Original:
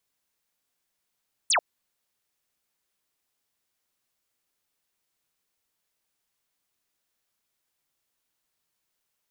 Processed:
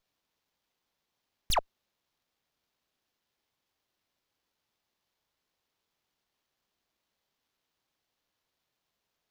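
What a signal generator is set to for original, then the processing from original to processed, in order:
single falling chirp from 10,000 Hz, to 550 Hz, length 0.09 s sine, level −19 dB
flat-topped bell 1,800 Hz −14.5 dB 1.1 octaves
windowed peak hold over 5 samples

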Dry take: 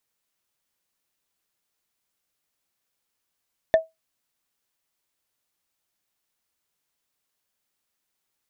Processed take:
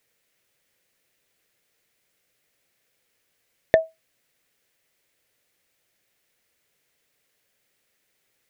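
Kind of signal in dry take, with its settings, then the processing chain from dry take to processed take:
struck wood, lowest mode 646 Hz, decay 0.18 s, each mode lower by 10 dB, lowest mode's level −9 dB
in parallel at +0.5 dB: brickwall limiter −16.5 dBFS
on the sum: downward compressor, threshold −18 dBFS
octave-band graphic EQ 125/500/1,000/2,000 Hz +5/+9/−6/+8 dB

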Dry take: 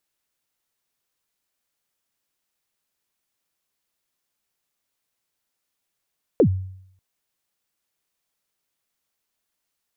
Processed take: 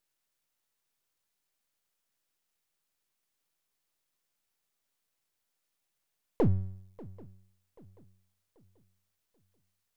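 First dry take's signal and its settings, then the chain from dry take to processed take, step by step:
synth kick length 0.59 s, from 550 Hz, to 94 Hz, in 82 ms, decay 0.70 s, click off, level −9.5 dB
gain on one half-wave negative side −12 dB
brickwall limiter −17 dBFS
feedback echo with a long and a short gap by turns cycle 785 ms, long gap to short 3 to 1, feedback 35%, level −21 dB

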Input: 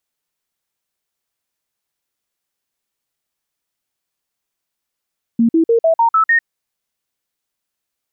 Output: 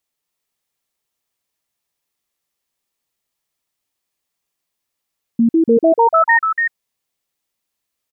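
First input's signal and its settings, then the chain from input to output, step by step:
stepped sweep 231 Hz up, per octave 2, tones 7, 0.10 s, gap 0.05 s −9 dBFS
notch filter 1,500 Hz, Q 10
on a send: single-tap delay 287 ms −4 dB

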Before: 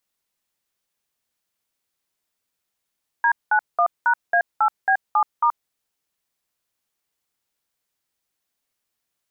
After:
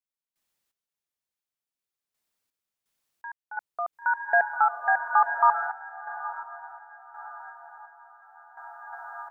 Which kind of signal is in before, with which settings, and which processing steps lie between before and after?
touch tones "D91#A8B7*", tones 78 ms, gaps 195 ms, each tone −17 dBFS
on a send: feedback delay with all-pass diffusion 1,012 ms, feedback 63%, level −7.5 dB
on the sum: sample-and-hold tremolo 2.8 Hz, depth 90%

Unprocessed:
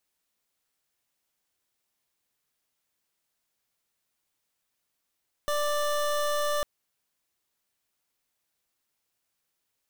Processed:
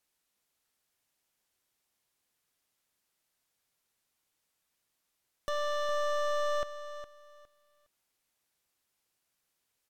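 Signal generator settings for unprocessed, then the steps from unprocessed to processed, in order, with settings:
pulse wave 589 Hz, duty 25% −27 dBFS 1.15 s
treble cut that deepens with the level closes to 2,400 Hz
hard clipping −31 dBFS
on a send: repeating echo 411 ms, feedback 22%, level −12 dB

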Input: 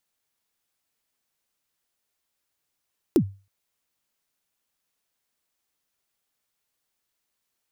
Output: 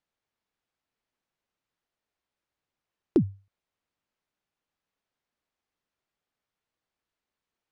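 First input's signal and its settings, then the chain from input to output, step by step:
synth kick length 0.32 s, from 400 Hz, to 98 Hz, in 77 ms, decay 0.32 s, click on, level −11 dB
head-to-tape spacing loss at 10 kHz 21 dB

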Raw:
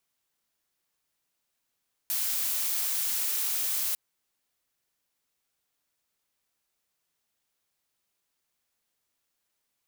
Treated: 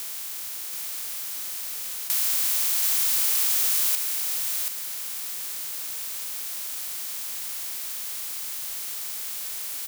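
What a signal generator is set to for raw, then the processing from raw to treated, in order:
noise blue, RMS −29 dBFS 1.85 s
compressor on every frequency bin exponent 0.2
on a send: single-tap delay 730 ms −4.5 dB

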